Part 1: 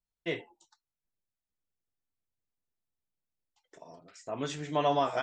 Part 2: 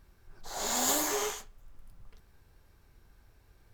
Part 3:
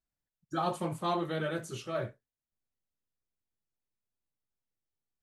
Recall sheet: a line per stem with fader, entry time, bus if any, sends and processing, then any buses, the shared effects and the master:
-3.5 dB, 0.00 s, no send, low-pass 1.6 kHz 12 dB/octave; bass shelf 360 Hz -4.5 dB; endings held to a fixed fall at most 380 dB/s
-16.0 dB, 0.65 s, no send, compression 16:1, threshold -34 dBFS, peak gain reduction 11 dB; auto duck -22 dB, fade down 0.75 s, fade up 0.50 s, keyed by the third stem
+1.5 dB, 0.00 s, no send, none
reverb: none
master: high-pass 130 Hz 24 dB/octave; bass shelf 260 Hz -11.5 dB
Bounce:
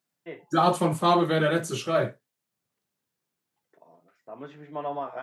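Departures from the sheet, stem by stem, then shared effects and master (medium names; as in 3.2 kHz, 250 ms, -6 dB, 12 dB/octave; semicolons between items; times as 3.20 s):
stem 2 -16.0 dB -> -23.0 dB; stem 3 +1.5 dB -> +10.5 dB; master: missing bass shelf 260 Hz -11.5 dB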